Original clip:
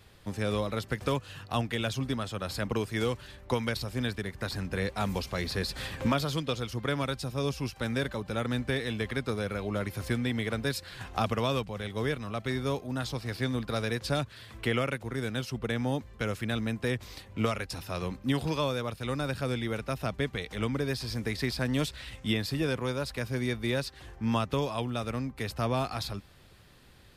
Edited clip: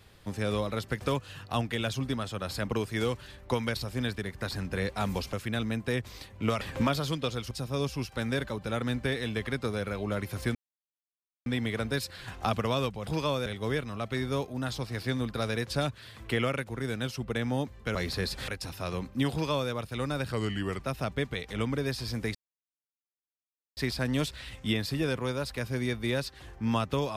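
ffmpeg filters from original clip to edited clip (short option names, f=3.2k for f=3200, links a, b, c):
-filter_complex "[0:a]asplit=12[a][b][c][d][e][f][g][h][i][j][k][l];[a]atrim=end=5.332[m];[b]atrim=start=16.288:end=17.572[n];[c]atrim=start=5.858:end=6.762[o];[d]atrim=start=7.148:end=10.19,asetpts=PTS-STARTPTS,afade=t=out:st=3.038:d=0.004:c=hsin,apad=pad_dur=0.91[p];[e]atrim=start=10.19:end=11.802,asetpts=PTS-STARTPTS,afade=t=in:d=0.004:c=hsin[q];[f]atrim=start=18.408:end=18.802[r];[g]atrim=start=11.798:end=16.292[s];[h]atrim=start=5.328:end=5.862[t];[i]atrim=start=17.568:end=19.414[u];[j]atrim=start=19.41:end=19.83,asetpts=PTS-STARTPTS,asetrate=37926,aresample=44100,atrim=end_sample=21537,asetpts=PTS-STARTPTS[v];[k]atrim=start=19.826:end=21.37,asetpts=PTS-STARTPTS,afade=t=out:st=1.54:d=0.004:c=hsin,apad=pad_dur=1.42[w];[l]atrim=start=21.37,asetpts=PTS-STARTPTS,afade=t=in:d=0.004:c=hsin[x];[m][n]acrossfade=d=0.004:c1=hsin:c2=hsin[y];[y][o]acrossfade=d=0.004:c1=hsin:c2=hsin[z];[p][q]concat=n=2:v=0:a=1[aa];[z][aa]acrossfade=d=0.004:c1=hsin:c2=hsin[ab];[ab][r]acrossfade=d=0.004:c1=hsin:c2=hsin[ac];[ac][s]acrossfade=d=0.004:c1=hsin:c2=hsin[ad];[ad][t]acrossfade=d=0.004:c1=hsin:c2=hsin[ae];[ae][u]acrossfade=d=0.004:c1=hsin:c2=hsin[af];[af][v]acrossfade=d=0.004:c1=hsin:c2=hsin[ag];[w][x]concat=n=2:v=0:a=1[ah];[ag][ah]acrossfade=d=0.004:c1=hsin:c2=hsin"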